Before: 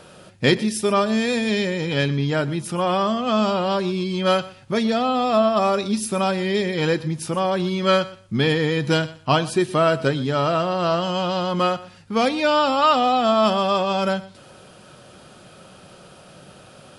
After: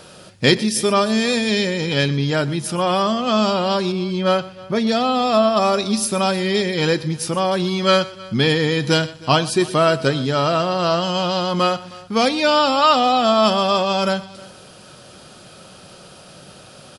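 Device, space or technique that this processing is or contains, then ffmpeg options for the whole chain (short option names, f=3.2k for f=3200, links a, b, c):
presence and air boost: -filter_complex "[0:a]equalizer=f=4.8k:t=o:w=0.9:g=5.5,highshelf=f=9.1k:g=6.5,asettb=1/sr,asplit=3[a][b][c];[a]atrim=end=3.924[d];[b]atrim=start=3.92:end=4.87,asetpts=PTS-STARTPTS,afade=t=in:d=0.004:c=qsin,afade=t=out:st=0.946:d=0.004:c=qsin,highshelf=f=3k:g=-10.5[e];[c]atrim=start=4.866[f];[d][e]acrossfade=d=0.004:c1=hsin:c2=qsin[g];[g][f]acrossfade=d=0.004:c1=qsin:c2=hsin,aecho=1:1:314:0.0841,volume=2dB"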